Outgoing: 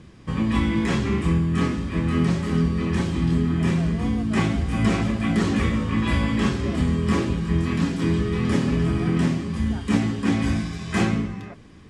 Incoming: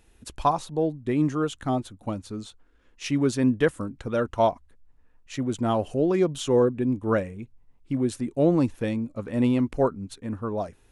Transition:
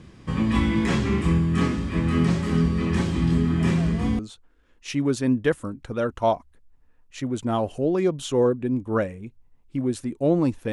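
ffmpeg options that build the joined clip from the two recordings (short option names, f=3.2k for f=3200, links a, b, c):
-filter_complex "[0:a]apad=whole_dur=10.72,atrim=end=10.72,atrim=end=4.192[a];[1:a]atrim=start=2.348:end=8.88[b];[a][b]acrossfade=d=0.004:c1=hsin:c2=hsin"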